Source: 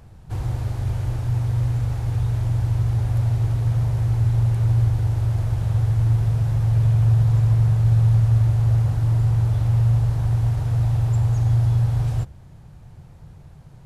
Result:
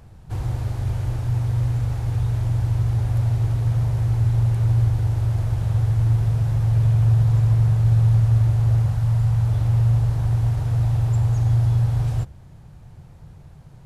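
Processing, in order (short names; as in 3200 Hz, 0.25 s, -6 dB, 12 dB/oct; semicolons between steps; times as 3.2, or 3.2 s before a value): 8.86–9.48 bell 330 Hz -11.5 dB 0.6 oct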